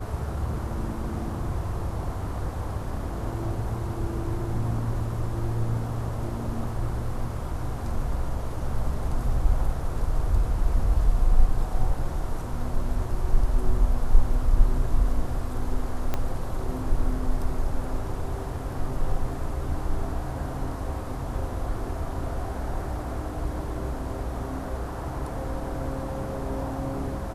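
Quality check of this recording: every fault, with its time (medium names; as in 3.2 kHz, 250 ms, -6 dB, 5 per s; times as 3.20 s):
16.14 s: pop -13 dBFS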